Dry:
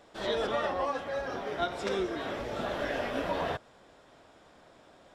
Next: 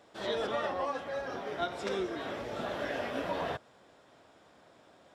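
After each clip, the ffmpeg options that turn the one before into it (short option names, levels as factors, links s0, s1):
-af "highpass=77,volume=0.75"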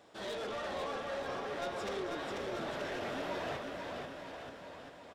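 -af "bandreject=f=57.18:t=h:w=4,bandreject=f=114.36:t=h:w=4,bandreject=f=171.54:t=h:w=4,bandreject=f=228.72:t=h:w=4,bandreject=f=285.9:t=h:w=4,bandreject=f=343.08:t=h:w=4,bandreject=f=400.26:t=h:w=4,bandreject=f=457.44:t=h:w=4,bandreject=f=514.62:t=h:w=4,bandreject=f=571.8:t=h:w=4,bandreject=f=628.98:t=h:w=4,bandreject=f=686.16:t=h:w=4,bandreject=f=743.34:t=h:w=4,bandreject=f=800.52:t=h:w=4,bandreject=f=857.7:t=h:w=4,bandreject=f=914.88:t=h:w=4,bandreject=f=972.06:t=h:w=4,bandreject=f=1029.24:t=h:w=4,bandreject=f=1086.42:t=h:w=4,bandreject=f=1143.6:t=h:w=4,bandreject=f=1200.78:t=h:w=4,bandreject=f=1257.96:t=h:w=4,bandreject=f=1315.14:t=h:w=4,bandreject=f=1372.32:t=h:w=4,bandreject=f=1429.5:t=h:w=4,bandreject=f=1486.68:t=h:w=4,bandreject=f=1543.86:t=h:w=4,bandreject=f=1601.04:t=h:w=4,bandreject=f=1658.22:t=h:w=4,bandreject=f=1715.4:t=h:w=4,bandreject=f=1772.58:t=h:w=4,bandreject=f=1829.76:t=h:w=4,bandreject=f=1886.94:t=h:w=4,bandreject=f=1944.12:t=h:w=4,bandreject=f=2001.3:t=h:w=4,bandreject=f=2058.48:t=h:w=4,bandreject=f=2115.66:t=h:w=4,bandreject=f=2172.84:t=h:w=4,bandreject=f=2230.02:t=h:w=4,bandreject=f=2287.2:t=h:w=4,asoftclip=type=tanh:threshold=0.015,aecho=1:1:490|931|1328|1685|2007:0.631|0.398|0.251|0.158|0.1"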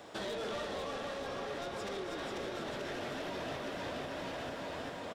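-filter_complex "[0:a]alimiter=level_in=5.62:limit=0.0631:level=0:latency=1:release=398,volume=0.178,acrossover=split=380|2800[s0][s1][s2];[s0]acompressor=threshold=0.00224:ratio=4[s3];[s1]acompressor=threshold=0.00282:ratio=4[s4];[s2]acompressor=threshold=0.00141:ratio=4[s5];[s3][s4][s5]amix=inputs=3:normalize=0,aecho=1:1:314:0.422,volume=2.99"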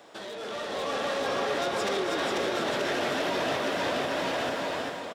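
-af "highpass=f=270:p=1,dynaudnorm=f=320:g=5:m=4.22"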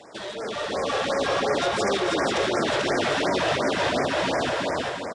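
-af "aresample=22050,aresample=44100,lowshelf=f=120:g=7,afftfilt=real='re*(1-between(b*sr/1024,200*pow(3500/200,0.5+0.5*sin(2*PI*2.8*pts/sr))/1.41,200*pow(3500/200,0.5+0.5*sin(2*PI*2.8*pts/sr))*1.41))':imag='im*(1-between(b*sr/1024,200*pow(3500/200,0.5+0.5*sin(2*PI*2.8*pts/sr))/1.41,200*pow(3500/200,0.5+0.5*sin(2*PI*2.8*pts/sr))*1.41))':win_size=1024:overlap=0.75,volume=1.88"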